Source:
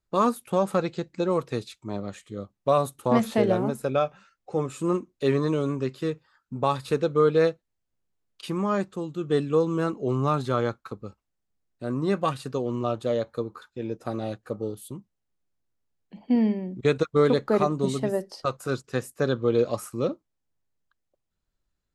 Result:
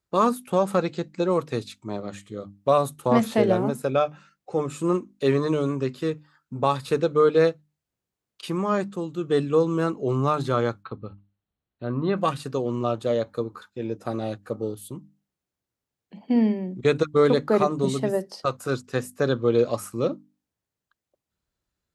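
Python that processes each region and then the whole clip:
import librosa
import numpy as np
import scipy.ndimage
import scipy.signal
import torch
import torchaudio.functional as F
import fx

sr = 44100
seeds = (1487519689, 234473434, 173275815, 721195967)

y = fx.chain(x, sr, fx.cheby_ripple(hz=4300.0, ripple_db=3),
    fx.low_shelf(hz=130.0, db=10.0), at=(10.83, 12.18))
y = scipy.signal.sosfilt(scipy.signal.butter(2, 54.0, 'highpass', fs=sr, output='sos'), y)
y = fx.hum_notches(y, sr, base_hz=50, count=6)
y = y * librosa.db_to_amplitude(2.0)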